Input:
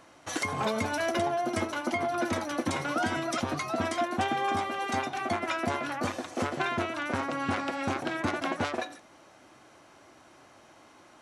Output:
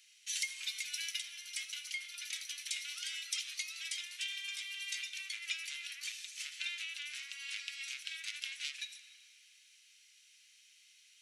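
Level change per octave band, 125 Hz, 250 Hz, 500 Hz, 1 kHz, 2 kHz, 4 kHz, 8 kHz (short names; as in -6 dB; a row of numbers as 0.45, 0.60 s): under -40 dB, under -40 dB, under -40 dB, -37.0 dB, -8.0 dB, +1.0 dB, +1.0 dB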